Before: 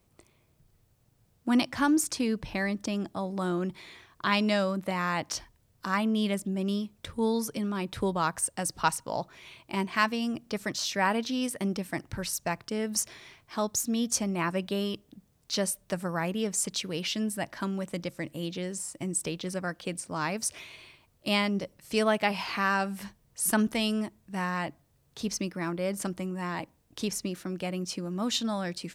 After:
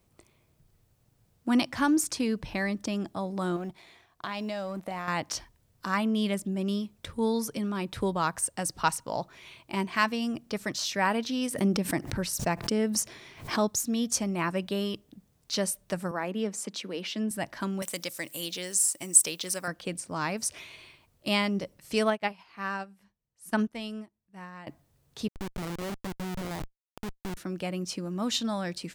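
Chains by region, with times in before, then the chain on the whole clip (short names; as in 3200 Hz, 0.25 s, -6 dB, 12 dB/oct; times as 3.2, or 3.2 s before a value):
3.56–5.08 G.711 law mismatch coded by A + bell 720 Hz +9.5 dB 0.45 oct + compressor, threshold -31 dBFS
11.51–13.68 bell 260 Hz +5 dB 2.7 oct + backwards sustainer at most 120 dB/s
16.11–17.31 Chebyshev high-pass 200 Hz, order 4 + high shelf 4400 Hz -8.5 dB
17.82–19.68 RIAA curve recording + mismatched tape noise reduction encoder only
22.1–24.67 high shelf 4200 Hz -5.5 dB + upward expander 2.5:1, over -37 dBFS
25.28–27.37 delta modulation 32 kbps, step -36.5 dBFS + Schmitt trigger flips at -29 dBFS
whole clip: dry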